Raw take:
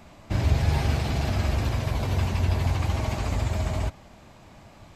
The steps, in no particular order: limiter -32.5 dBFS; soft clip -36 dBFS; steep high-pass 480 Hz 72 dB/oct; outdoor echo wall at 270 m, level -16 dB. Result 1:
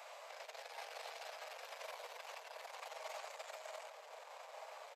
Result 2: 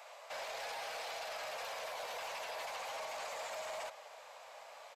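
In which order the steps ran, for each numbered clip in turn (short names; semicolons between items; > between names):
outdoor echo > limiter > soft clip > steep high-pass; steep high-pass > limiter > soft clip > outdoor echo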